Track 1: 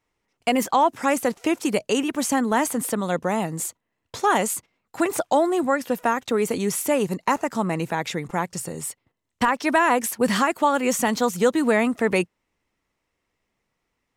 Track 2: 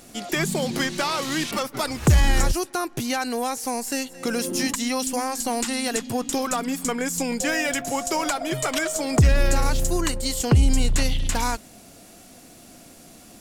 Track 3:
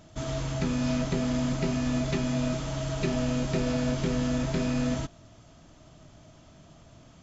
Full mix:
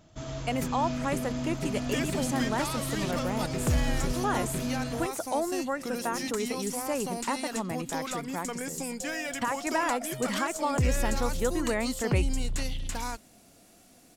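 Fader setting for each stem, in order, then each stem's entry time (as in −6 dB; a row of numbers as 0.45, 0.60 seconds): −10.0, −10.0, −5.0 decibels; 0.00, 1.60, 0.00 seconds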